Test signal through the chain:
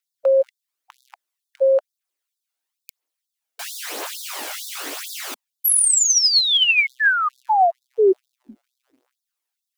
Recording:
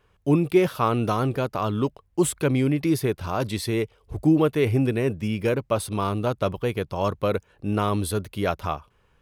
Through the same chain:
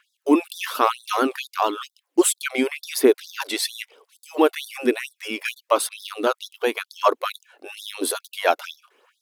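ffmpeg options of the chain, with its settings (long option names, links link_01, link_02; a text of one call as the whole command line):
ffmpeg -i in.wav -af "aphaser=in_gain=1:out_gain=1:delay=1.5:decay=0.44:speed=0.99:type=triangular,afftfilt=real='re*gte(b*sr/1024,240*pow(3500/240,0.5+0.5*sin(2*PI*2.2*pts/sr)))':imag='im*gte(b*sr/1024,240*pow(3500/240,0.5+0.5*sin(2*PI*2.2*pts/sr)))':win_size=1024:overlap=0.75,volume=7dB" out.wav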